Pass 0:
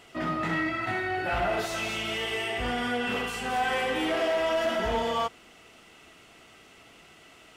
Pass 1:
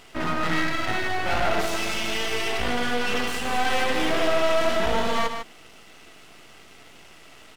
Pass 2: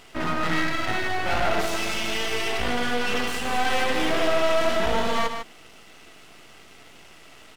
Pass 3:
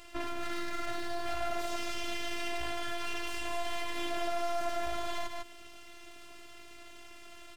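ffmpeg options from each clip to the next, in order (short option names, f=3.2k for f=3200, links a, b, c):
-af "aeval=exprs='max(val(0),0)':c=same,aecho=1:1:150:0.422,volume=7.5dB"
-af anull
-filter_complex "[0:a]acrossover=split=600|6600[a][b][c];[a]acompressor=threshold=-34dB:ratio=4[d];[b]acompressor=threshold=-34dB:ratio=4[e];[c]acompressor=threshold=-49dB:ratio=4[f];[d][e][f]amix=inputs=3:normalize=0,afftfilt=real='hypot(re,im)*cos(PI*b)':imag='0':win_size=512:overlap=0.75"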